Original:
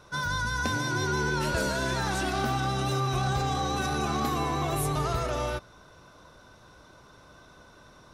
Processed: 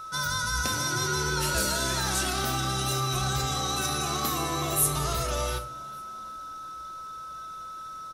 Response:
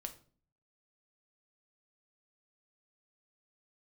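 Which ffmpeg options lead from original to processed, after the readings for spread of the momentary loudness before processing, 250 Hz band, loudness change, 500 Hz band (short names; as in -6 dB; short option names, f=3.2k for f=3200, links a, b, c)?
2 LU, -3.0 dB, +1.5 dB, -2.0 dB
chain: -filter_complex "[1:a]atrim=start_sample=2205[a];[0:a][a]afir=irnorm=-1:irlink=0,crystalizer=i=4:c=0,aeval=exprs='val(0)+0.0141*sin(2*PI*1300*n/s)':c=same,asplit=4[b][c][d][e];[c]adelay=386,afreqshift=77,volume=-24dB[f];[d]adelay=772,afreqshift=154,volume=-29.4dB[g];[e]adelay=1158,afreqshift=231,volume=-34.7dB[h];[b][f][g][h]amix=inputs=4:normalize=0"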